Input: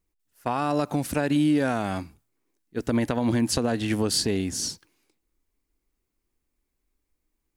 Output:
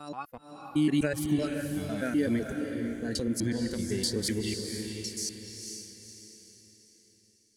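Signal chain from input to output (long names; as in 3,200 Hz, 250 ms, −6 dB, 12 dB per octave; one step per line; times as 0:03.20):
slices reordered back to front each 126 ms, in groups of 6
speech leveller 2 s
noise reduction from a noise print of the clip's start 16 dB
on a send: feedback delay with all-pass diffusion 490 ms, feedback 44%, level −5 dB
on the sum: level −4 dB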